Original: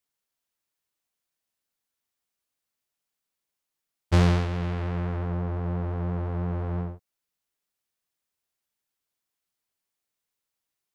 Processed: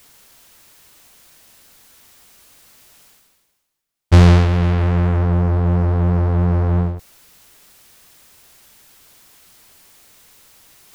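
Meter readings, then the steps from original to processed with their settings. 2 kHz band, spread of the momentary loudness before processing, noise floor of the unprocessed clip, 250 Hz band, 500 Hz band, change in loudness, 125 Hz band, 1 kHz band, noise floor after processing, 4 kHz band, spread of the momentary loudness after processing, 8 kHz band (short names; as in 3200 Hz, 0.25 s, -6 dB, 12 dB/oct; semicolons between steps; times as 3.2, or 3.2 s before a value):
+9.0 dB, 8 LU, under -85 dBFS, +10.5 dB, +10.0 dB, +12.0 dB, +12.5 dB, +9.5 dB, -69 dBFS, +9.0 dB, 7 LU, n/a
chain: low shelf 110 Hz +5.5 dB; sample leveller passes 1; reverse; upward compressor, threshold -31 dBFS; reverse; gain +6.5 dB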